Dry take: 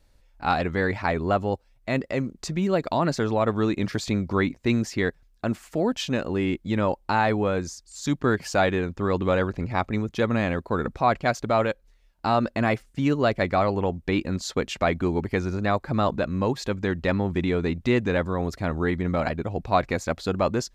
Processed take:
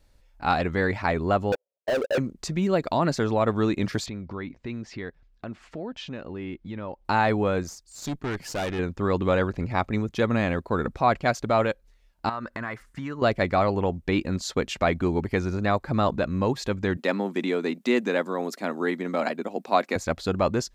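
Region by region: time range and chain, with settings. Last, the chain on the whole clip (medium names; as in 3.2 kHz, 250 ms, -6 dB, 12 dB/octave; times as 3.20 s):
1.52–2.18 s: Butterworth band-pass 510 Hz, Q 2.4 + waveshaping leveller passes 5
4.06–7.05 s: low-pass 3.9 kHz + compression 2:1, threshold -39 dBFS
7.63–8.79 s: treble shelf 7.7 kHz +3 dB + valve stage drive 25 dB, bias 0.7
12.29–13.22 s: high-order bell 1.4 kHz +10 dB 1.3 oct + compression 3:1, threshold -33 dBFS
16.97–19.96 s: Chebyshev high-pass 210 Hz, order 4 + treble shelf 6.5 kHz +9.5 dB
whole clip: none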